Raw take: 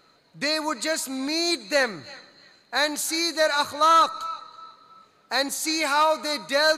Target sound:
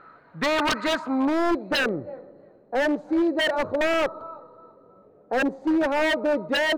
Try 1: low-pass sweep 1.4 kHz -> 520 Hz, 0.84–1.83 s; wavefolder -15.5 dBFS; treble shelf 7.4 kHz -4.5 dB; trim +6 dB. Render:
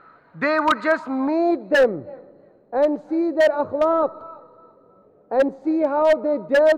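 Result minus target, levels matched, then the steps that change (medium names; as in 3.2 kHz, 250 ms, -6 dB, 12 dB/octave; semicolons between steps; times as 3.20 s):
wavefolder: distortion -13 dB
change: wavefolder -23 dBFS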